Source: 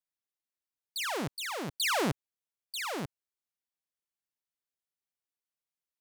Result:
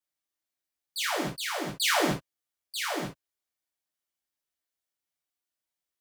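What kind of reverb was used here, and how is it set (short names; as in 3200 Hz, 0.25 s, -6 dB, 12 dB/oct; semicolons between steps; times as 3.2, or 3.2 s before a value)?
non-linear reverb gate 0.1 s falling, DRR -4.5 dB; gain -2 dB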